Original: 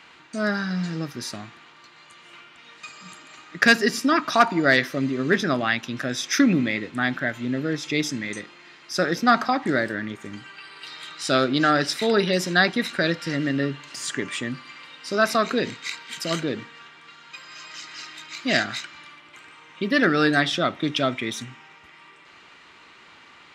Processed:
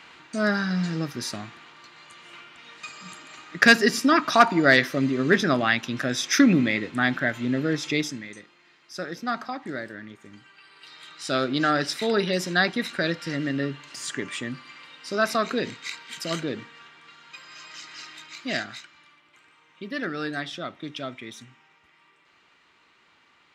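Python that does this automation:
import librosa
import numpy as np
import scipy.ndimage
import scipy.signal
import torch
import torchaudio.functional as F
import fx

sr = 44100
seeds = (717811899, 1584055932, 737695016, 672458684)

y = fx.gain(x, sr, db=fx.line((7.89, 1.0), (8.33, -10.5), (10.54, -10.5), (11.58, -3.0), (18.17, -3.0), (18.94, -11.0)))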